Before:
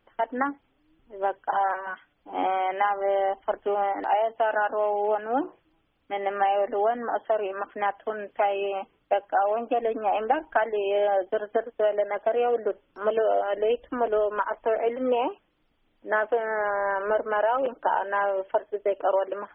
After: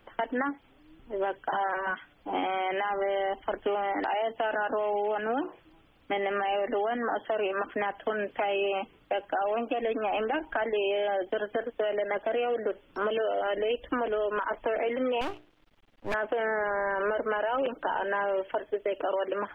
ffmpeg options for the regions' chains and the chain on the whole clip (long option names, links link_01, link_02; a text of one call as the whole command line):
ffmpeg -i in.wav -filter_complex "[0:a]asettb=1/sr,asplit=3[link_01][link_02][link_03];[link_01]atrim=end=15.214[link_04];[link_02]atrim=start=15.21:end=16.14,asetpts=PTS-STARTPTS,afade=type=in:duration=0.004:curve=qsin,afade=type=out:start_time=0.926:duration=0.004:curve=qsin,bandreject=frequency=60:width_type=h:width=6,bandreject=frequency=120:width_type=h:width=6,bandreject=frequency=180:width_type=h:width=6,bandreject=frequency=240:width_type=h:width=6,bandreject=frequency=300:width_type=h:width=6,bandreject=frequency=360:width_type=h:width=6,bandreject=frequency=420:width_type=h:width=6,aeval=exprs='max(val(0),0)':channel_layout=same[link_05];[link_03]atrim=start=16.136[link_06];[link_04][link_05]acrossfade=duration=0.004:curve1=hsin:curve2=qsin[link_07];[link_07][link_06]acrossfade=duration=0.004:curve1=qsin:curve2=hsin,alimiter=limit=-21dB:level=0:latency=1:release=25,acrossover=split=390|1700[link_08][link_09][link_10];[link_08]acompressor=threshold=-43dB:ratio=4[link_11];[link_09]acompressor=threshold=-42dB:ratio=4[link_12];[link_10]acompressor=threshold=-44dB:ratio=4[link_13];[link_11][link_12][link_13]amix=inputs=3:normalize=0,volume=9dB" out.wav